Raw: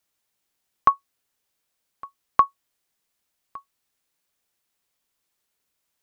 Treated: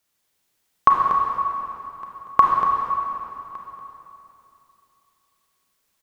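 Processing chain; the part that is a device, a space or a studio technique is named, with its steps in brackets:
cave (single-tap delay 238 ms −9.5 dB; convolution reverb RT60 2.9 s, pre-delay 29 ms, DRR −1 dB)
level +2.5 dB

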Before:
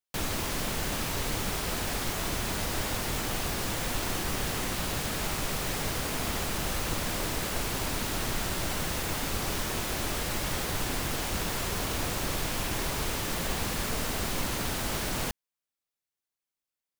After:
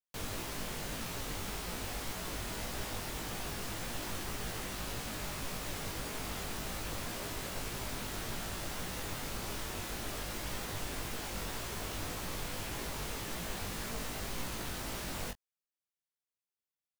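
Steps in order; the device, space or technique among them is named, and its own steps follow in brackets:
double-tracked vocal (double-tracking delay 22 ms −13 dB; chorus effect 1.8 Hz, delay 17 ms, depth 3.6 ms)
level −5.5 dB

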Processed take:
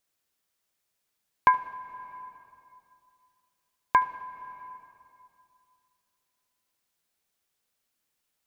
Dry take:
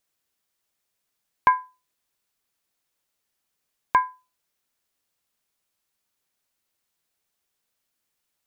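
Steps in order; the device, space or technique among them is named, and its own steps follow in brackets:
compressed reverb return (on a send at −7.5 dB: convolution reverb RT60 2.5 s, pre-delay 65 ms + downward compressor 5 to 1, threshold −30 dBFS, peak gain reduction 9 dB)
on the sum: level −1.5 dB

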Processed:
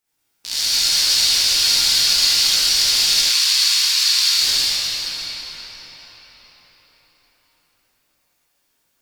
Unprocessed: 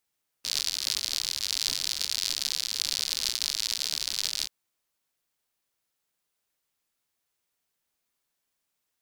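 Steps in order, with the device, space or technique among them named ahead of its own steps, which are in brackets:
cathedral (convolution reverb RT60 5.6 s, pre-delay 91 ms, DRR −7.5 dB)
0:03.23–0:04.38: elliptic high-pass filter 970 Hz, stop band 60 dB
reverb whose tail is shaped and stops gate 100 ms rising, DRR −6 dB

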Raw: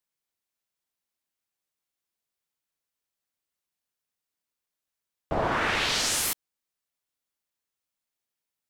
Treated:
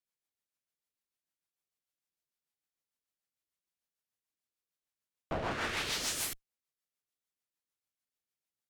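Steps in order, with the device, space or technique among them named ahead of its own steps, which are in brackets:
overdriven rotary cabinet (tube saturation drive 29 dB, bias 0.7; rotating-speaker cabinet horn 6.7 Hz)

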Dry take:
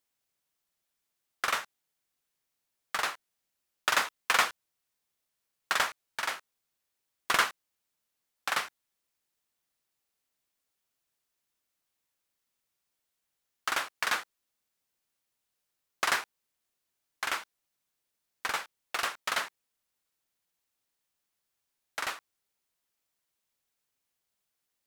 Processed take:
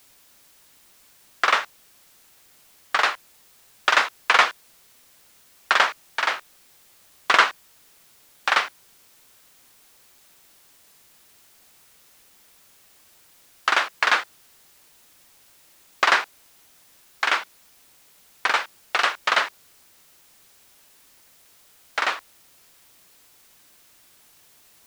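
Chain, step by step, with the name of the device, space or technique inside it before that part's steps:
dictaphone (band-pass filter 310–4,400 Hz; automatic gain control gain up to 11.5 dB; tape wow and flutter; white noise bed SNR 27 dB)

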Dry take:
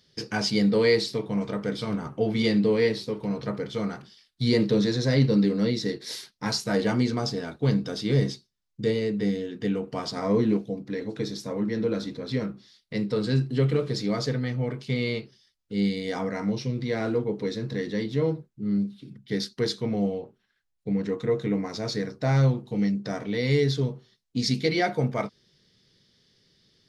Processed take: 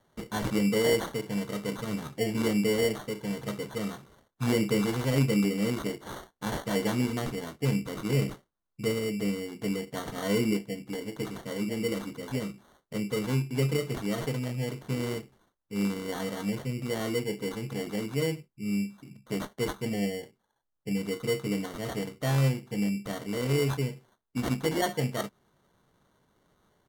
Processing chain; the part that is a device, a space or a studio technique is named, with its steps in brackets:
crushed at another speed (tape speed factor 1.25×; decimation without filtering 14×; tape speed factor 0.8×)
level −4 dB

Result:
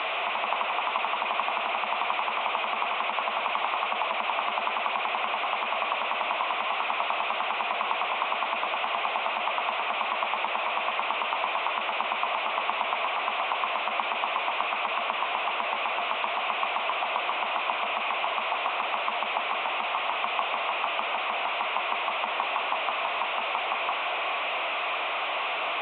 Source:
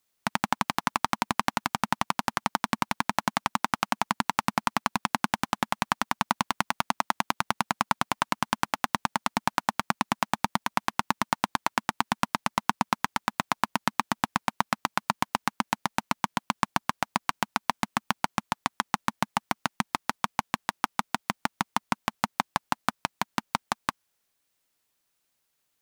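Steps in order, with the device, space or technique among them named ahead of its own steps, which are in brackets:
digital answering machine (band-pass filter 390–3,200 Hz; linear delta modulator 16 kbit/s, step −17.5 dBFS; loudspeaker in its box 500–3,900 Hz, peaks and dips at 690 Hz +9 dB, 1,100 Hz +7 dB, 1,700 Hz −10 dB, 2,500 Hz +6 dB, 3,700 Hz +8 dB)
level −7.5 dB

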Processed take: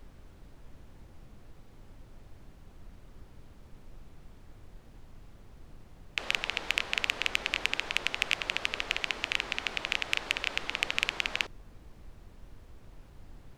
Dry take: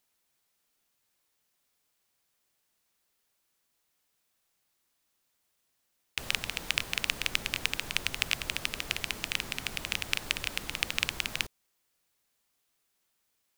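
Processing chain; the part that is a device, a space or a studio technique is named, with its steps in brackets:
aircraft cabin announcement (band-pass filter 370–3,700 Hz; soft clipping −12.5 dBFS, distortion −15 dB; brown noise bed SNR 11 dB)
level +5 dB

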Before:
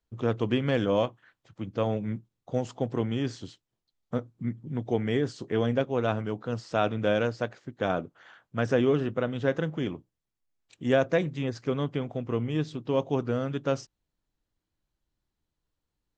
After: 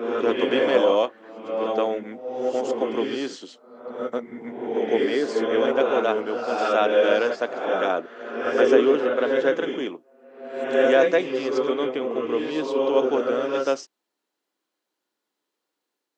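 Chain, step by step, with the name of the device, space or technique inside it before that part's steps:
ghost voice (reversed playback; convolution reverb RT60 1.1 s, pre-delay 97 ms, DRR 0 dB; reversed playback; high-pass filter 300 Hz 24 dB per octave)
level +5 dB

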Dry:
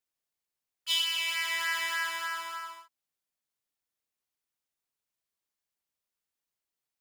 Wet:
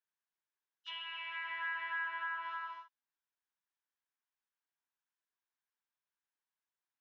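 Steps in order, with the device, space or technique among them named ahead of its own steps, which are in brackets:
treble cut that deepens with the level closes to 2,500 Hz, closed at −31 dBFS
parametric band 160 Hz +4.5 dB 0.32 octaves
hearing aid with frequency lowering (hearing-aid frequency compression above 2,700 Hz 1.5 to 1; downward compressor 2.5 to 1, threshold −37 dBFS, peak gain reduction 6.5 dB; loudspeaker in its box 290–5,200 Hz, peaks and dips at 520 Hz −10 dB, 970 Hz +7 dB, 1,600 Hz +9 dB, 4,500 Hz −10 dB)
level −6 dB

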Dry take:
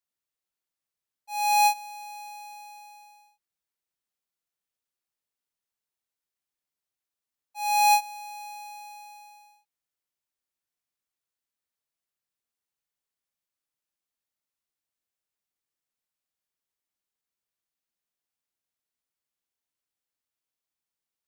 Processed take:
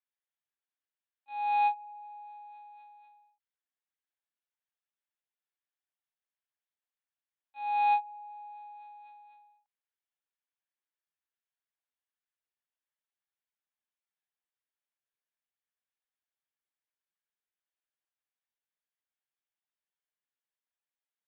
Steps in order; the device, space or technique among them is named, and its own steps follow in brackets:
talking toy (linear-prediction vocoder at 8 kHz pitch kept; high-pass filter 470 Hz 12 dB per octave; parametric band 1,700 Hz +5 dB 0.31 octaves)
level −5 dB

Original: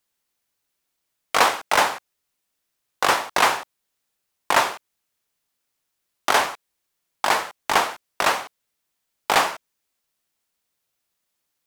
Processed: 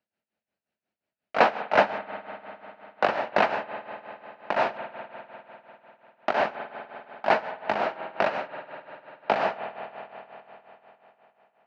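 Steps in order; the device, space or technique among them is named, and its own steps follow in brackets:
combo amplifier with spring reverb and tremolo (spring reverb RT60 3.9 s, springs 49 ms, chirp 20 ms, DRR 10 dB; amplitude tremolo 5.6 Hz, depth 77%; loudspeaker in its box 82–3,400 Hz, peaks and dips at 210 Hz +9 dB, 630 Hz +8 dB, 1,100 Hz −8 dB, 2,100 Hz −4 dB, 3,400 Hz −10 dB)

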